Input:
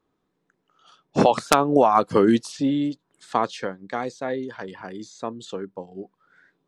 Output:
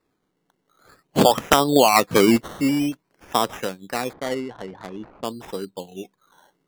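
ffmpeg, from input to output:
ffmpeg -i in.wav -filter_complex "[0:a]acrusher=samples=14:mix=1:aa=0.000001:lfo=1:lforange=8.4:lforate=0.5,asettb=1/sr,asplit=3[link_01][link_02][link_03];[link_01]atrim=end=4.134[link_04];[link_02]atrim=start=4.13:end=5.25,asetpts=PTS-STARTPTS,afade=type=in:duration=0.004:curve=qsin,afade=type=out:start_time=1.116:duration=0.004:curve=qsin,adynamicsmooth=sensitivity=6:basefreq=710[link_05];[link_03]atrim=start=5.246[link_06];[link_04][link_05]acrossfade=duration=0.004:curve1=hsin:curve2=qsin[link_07];[link_07][link_06]acrossfade=duration=0.004:curve1=qsin:curve2=hsin,volume=1.5dB" out.wav

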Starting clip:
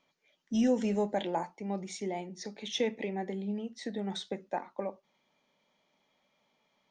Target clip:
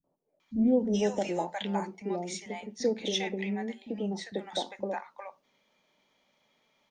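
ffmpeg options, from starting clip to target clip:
ffmpeg -i in.wav -filter_complex "[0:a]acrossover=split=180|800[link_01][link_02][link_03];[link_02]adelay=40[link_04];[link_03]adelay=400[link_05];[link_01][link_04][link_05]amix=inputs=3:normalize=0,volume=4dB" out.wav

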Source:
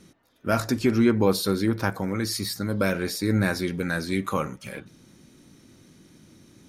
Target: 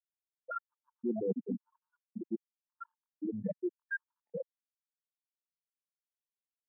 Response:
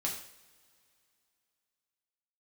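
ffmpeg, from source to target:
-filter_complex "[0:a]lowshelf=frequency=310:gain=-6,asplit=2[link_01][link_02];[link_02]adelay=652,lowpass=frequency=1600:poles=1,volume=-4dB,asplit=2[link_03][link_04];[link_04]adelay=652,lowpass=frequency=1600:poles=1,volume=0.28,asplit=2[link_05][link_06];[link_06]adelay=652,lowpass=frequency=1600:poles=1,volume=0.28,asplit=2[link_07][link_08];[link_08]adelay=652,lowpass=frequency=1600:poles=1,volume=0.28[link_09];[link_01][link_03][link_05][link_07][link_09]amix=inputs=5:normalize=0,afftfilt=real='re*gte(hypot(re,im),0.355)':imag='im*gte(hypot(re,im),0.355)':win_size=1024:overlap=0.75,areverse,acompressor=threshold=-32dB:ratio=6,areverse,highpass=frequency=170:width=0.5412,highpass=frequency=170:width=1.3066,afftfilt=real='re*gt(sin(2*PI*0.94*pts/sr)*(1-2*mod(floor(b*sr/1024/880),2)),0)':imag='im*gt(sin(2*PI*0.94*pts/sr)*(1-2*mod(floor(b*sr/1024/880),2)),0)':win_size=1024:overlap=0.75,volume=1.5dB"

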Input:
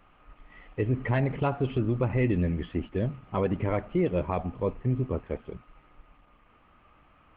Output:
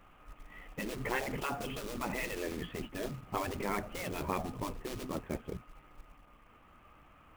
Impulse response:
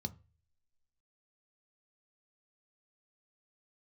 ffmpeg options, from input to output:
-af "acrusher=bits=5:mode=log:mix=0:aa=0.000001,afftfilt=real='re*lt(hypot(re,im),0.158)':imag='im*lt(hypot(re,im),0.158)':win_size=1024:overlap=0.75"

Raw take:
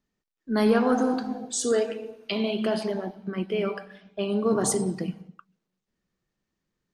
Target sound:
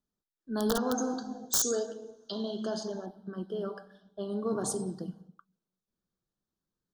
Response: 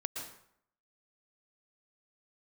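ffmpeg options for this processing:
-filter_complex "[0:a]asettb=1/sr,asplit=3[link_01][link_02][link_03];[link_01]atrim=end=0.744[link_04];[link_02]atrim=start=0.74:end=3.06,asetpts=PTS-STARTPTS,afade=type=in:duration=0.004:curve=qsin,afade=type=out:start_time=2.316:duration=0.004:curve=qsin,lowpass=frequency=6500:width_type=q:width=7.5[link_05];[link_03]atrim=start=3.056[link_06];[link_04][link_05]acrossfade=duration=0.004:curve1=hsin:curve2=qsin[link_07];[link_07][link_06]acrossfade=duration=0.004:curve1=qsin:curve2=hsin,aeval=exprs='(mod(3.76*val(0)+1,2)-1)/3.76':channel_layout=same,asuperstop=centerf=2300:order=8:qfactor=1.5,volume=-8dB"

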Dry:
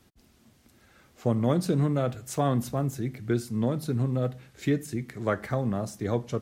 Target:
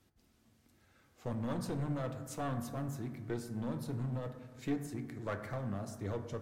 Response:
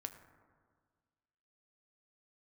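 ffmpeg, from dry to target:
-filter_complex "[0:a]aeval=exprs='clip(val(0),-1,0.0501)':channel_layout=same[link_01];[1:a]atrim=start_sample=2205[link_02];[link_01][link_02]afir=irnorm=-1:irlink=0,volume=-6dB"

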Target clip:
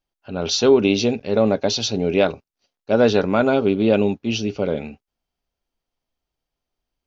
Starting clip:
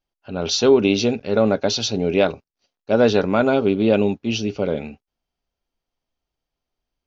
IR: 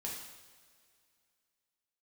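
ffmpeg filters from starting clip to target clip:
-filter_complex "[0:a]asettb=1/sr,asplit=3[link_01][link_02][link_03];[link_01]atrim=end=0.924[link_04];[link_02]atrim=start=0.92:end=1.83,asetpts=PTS-STARTPTS,afade=type=in:duration=0.004:curve=qsin,afade=type=out:start_time=0.906:duration=0.004:curve=qsin,equalizer=frequency=1400:width_type=o:width=0.23:gain=-6.5[link_05];[link_03]atrim=start=1.826[link_06];[link_04][link_05]acrossfade=duration=0.004:curve1=hsin:curve2=qsin[link_07];[link_07][link_06]acrossfade=duration=0.004:curve1=qsin:curve2=hsin"

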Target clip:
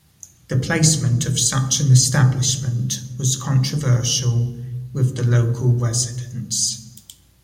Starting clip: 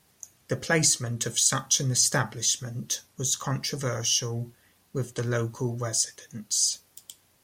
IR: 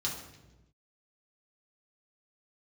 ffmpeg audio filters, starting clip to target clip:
-filter_complex "[0:a]asplit=2[link_01][link_02];[link_02]lowshelf=frequency=350:gain=9[link_03];[1:a]atrim=start_sample=2205,lowshelf=frequency=260:gain=9[link_04];[link_03][link_04]afir=irnorm=-1:irlink=0,volume=-11.5dB[link_05];[link_01][link_05]amix=inputs=2:normalize=0,volume=2dB"

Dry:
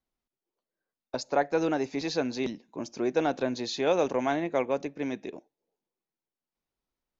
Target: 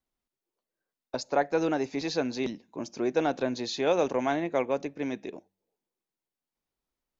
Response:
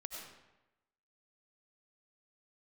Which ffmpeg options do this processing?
-af "bandreject=frequency=95.59:width_type=h:width=4,bandreject=frequency=191.18:width_type=h:width=4"

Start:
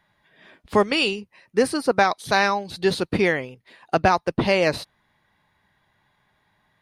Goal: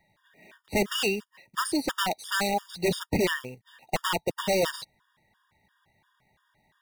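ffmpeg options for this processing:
ffmpeg -i in.wav -af "acrusher=bits=3:mode=log:mix=0:aa=0.000001,aeval=exprs='0.141*(abs(mod(val(0)/0.141+3,4)-2)-1)':channel_layout=same,afftfilt=real='re*gt(sin(2*PI*2.9*pts/sr)*(1-2*mod(floor(b*sr/1024/940),2)),0)':imag='im*gt(sin(2*PI*2.9*pts/sr)*(1-2*mod(floor(b*sr/1024/940),2)),0)':win_size=1024:overlap=0.75" out.wav

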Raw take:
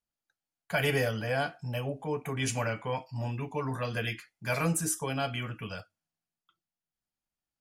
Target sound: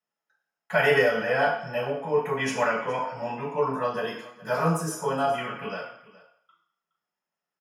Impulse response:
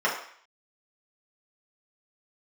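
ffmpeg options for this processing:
-filter_complex "[0:a]asettb=1/sr,asplit=3[link_01][link_02][link_03];[link_01]atrim=end=3.594[link_04];[link_02]atrim=start=3.59:end=5.38,asetpts=PTS-STARTPTS,afade=type=in:duration=0.004:curve=qsin,afade=type=out:start_time=1.786:duration=0.004:curve=qsin,equalizer=frequency=2200:width_type=o:width=0.59:gain=-14.5[link_05];[link_03]atrim=start=5.376[link_06];[link_04][link_05]acrossfade=duration=0.004:curve1=hsin:curve2=qsin[link_07];[link_07][link_06]acrossfade=duration=0.004:curve1=qsin:curve2=hsin,aecho=1:1:418:0.106[link_08];[1:a]atrim=start_sample=2205,asetrate=43218,aresample=44100[link_09];[link_08][link_09]afir=irnorm=-1:irlink=0,volume=-6dB"

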